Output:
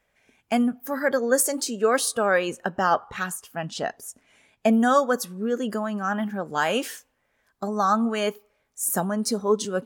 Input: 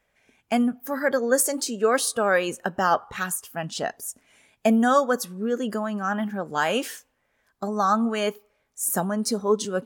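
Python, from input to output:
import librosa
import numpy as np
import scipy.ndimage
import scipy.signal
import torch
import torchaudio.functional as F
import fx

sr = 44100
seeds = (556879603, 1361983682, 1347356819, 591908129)

y = fx.high_shelf(x, sr, hz=8100.0, db=-8.5, at=(2.26, 4.73))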